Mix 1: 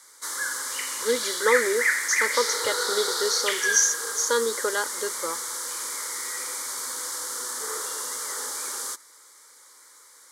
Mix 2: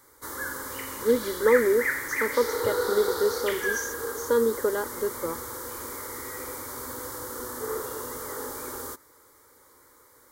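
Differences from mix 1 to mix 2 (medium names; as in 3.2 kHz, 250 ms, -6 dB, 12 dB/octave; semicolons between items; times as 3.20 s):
speech -4.0 dB; master: remove frequency weighting ITU-R 468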